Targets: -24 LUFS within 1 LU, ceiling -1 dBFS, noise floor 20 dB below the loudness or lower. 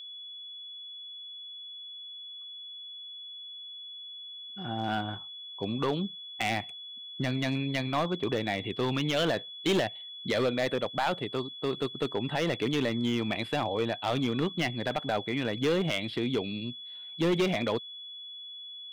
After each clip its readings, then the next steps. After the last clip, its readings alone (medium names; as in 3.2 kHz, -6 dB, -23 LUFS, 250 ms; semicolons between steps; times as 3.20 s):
clipped samples 1.5%; clipping level -21.5 dBFS; steady tone 3.4 kHz; tone level -41 dBFS; loudness -32.0 LUFS; peak level -21.5 dBFS; loudness target -24.0 LUFS
-> clip repair -21.5 dBFS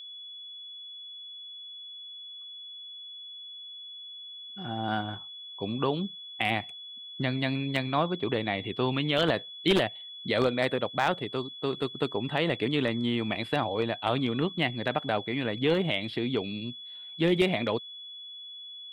clipped samples 0.0%; steady tone 3.4 kHz; tone level -41 dBFS
-> band-stop 3.4 kHz, Q 30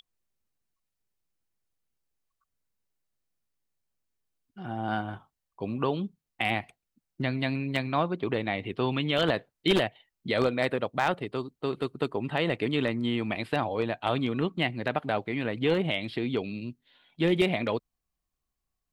steady tone not found; loudness -29.5 LUFS; peak level -12.0 dBFS; loudness target -24.0 LUFS
-> trim +5.5 dB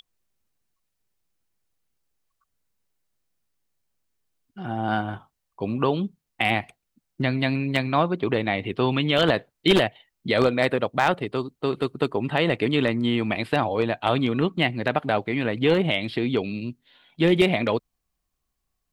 loudness -24.0 LUFS; peak level -6.5 dBFS; noise floor -79 dBFS